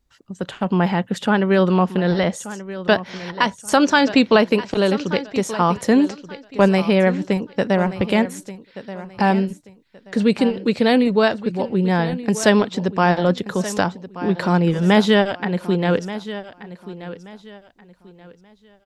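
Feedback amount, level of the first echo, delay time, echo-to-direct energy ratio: 27%, -14.5 dB, 1.18 s, -14.0 dB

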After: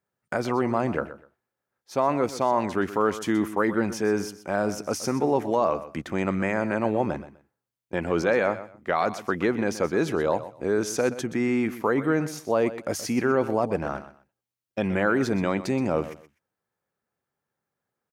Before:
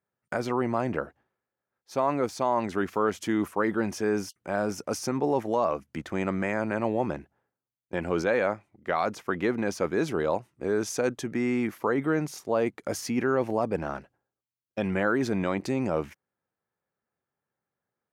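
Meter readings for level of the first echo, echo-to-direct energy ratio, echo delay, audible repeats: -14.0 dB, -14.0 dB, 0.125 s, 2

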